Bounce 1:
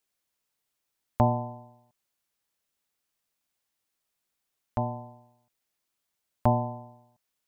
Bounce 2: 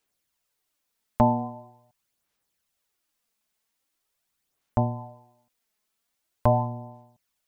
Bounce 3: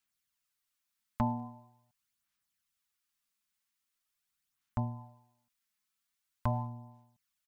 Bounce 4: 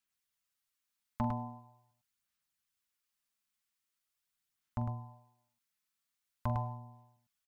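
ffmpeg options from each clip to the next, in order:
ffmpeg -i in.wav -af "aphaser=in_gain=1:out_gain=1:delay=4.7:decay=0.44:speed=0.43:type=sinusoidal,volume=2dB" out.wav
ffmpeg -i in.wav -af "firequalizer=gain_entry='entry(220,0);entry(410,-13);entry(1200,3)':delay=0.05:min_phase=1,volume=-8.5dB" out.wav
ffmpeg -i in.wav -af "aecho=1:1:43|104:0.251|0.596,volume=-3.5dB" out.wav

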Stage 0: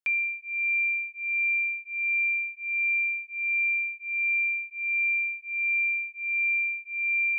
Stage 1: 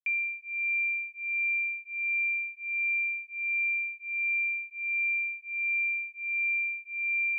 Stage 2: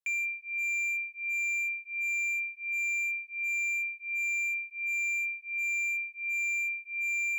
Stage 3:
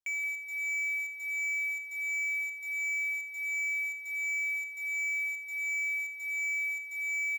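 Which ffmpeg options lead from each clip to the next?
ffmpeg -i in.wav -af "agate=range=-33dB:threshold=-42dB:ratio=3:detection=peak,volume=-3dB" out.wav
ffmpeg -i in.wav -af "volume=29dB,asoftclip=hard,volume=-29dB" out.wav
ffmpeg -i in.wav -filter_complex "[0:a]asplit=2[link_01][link_02];[link_02]acrusher=bits=5:mix=0:aa=0.000001,volume=-10dB[link_03];[link_01][link_03]amix=inputs=2:normalize=0,afreqshift=-77,asplit=2[link_04][link_05];[link_05]adelay=174.9,volume=-7dB,highshelf=frequency=4000:gain=-3.94[link_06];[link_04][link_06]amix=inputs=2:normalize=0,volume=-5dB" out.wav

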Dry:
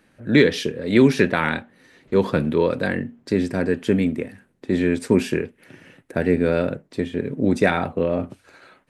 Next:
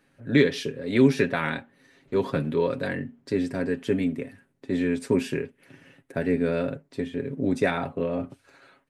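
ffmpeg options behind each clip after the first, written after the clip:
ffmpeg -i in.wav -af "aecho=1:1:7.3:0.51,volume=-6.5dB" out.wav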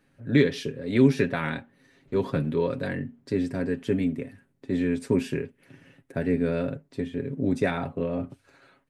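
ffmpeg -i in.wav -af "lowshelf=frequency=210:gain=7,volume=-3dB" out.wav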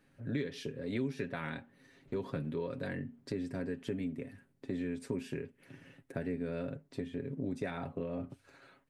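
ffmpeg -i in.wav -af "acompressor=threshold=-34dB:ratio=3,volume=-2.5dB" out.wav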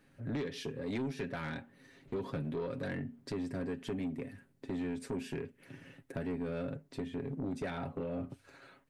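ffmpeg -i in.wav -af "asoftclip=type=tanh:threshold=-33dB,volume=2.5dB" out.wav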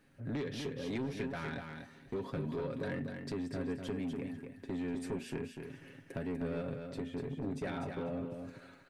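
ffmpeg -i in.wav -af "aecho=1:1:246|492|738:0.501|0.0902|0.0162,volume=-1dB" out.wav

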